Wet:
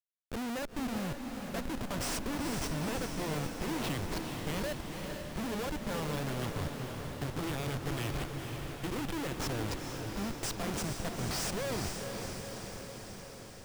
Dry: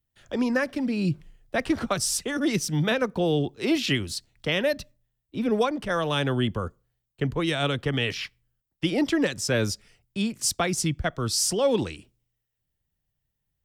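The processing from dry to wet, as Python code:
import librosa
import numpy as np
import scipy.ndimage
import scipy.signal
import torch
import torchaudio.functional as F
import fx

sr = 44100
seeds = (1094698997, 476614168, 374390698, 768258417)

y = fx.schmitt(x, sr, flips_db=-27.0)
y = fx.echo_diffused(y, sr, ms=473, feedback_pct=68, wet_db=-5.0)
y = y * 10.0 ** (-8.5 / 20.0)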